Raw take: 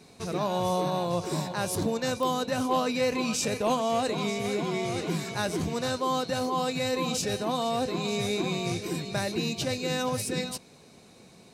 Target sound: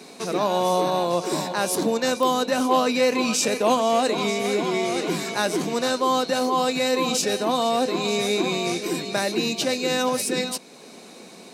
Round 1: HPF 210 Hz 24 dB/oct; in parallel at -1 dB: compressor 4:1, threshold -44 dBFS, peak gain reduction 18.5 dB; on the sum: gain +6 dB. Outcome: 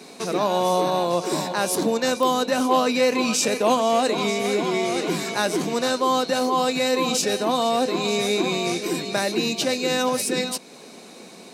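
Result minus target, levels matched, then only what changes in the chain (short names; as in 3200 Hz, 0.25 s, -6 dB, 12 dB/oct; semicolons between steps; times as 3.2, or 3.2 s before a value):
compressor: peak gain reduction -6 dB
change: compressor 4:1, threshold -52 dBFS, peak gain reduction 24.5 dB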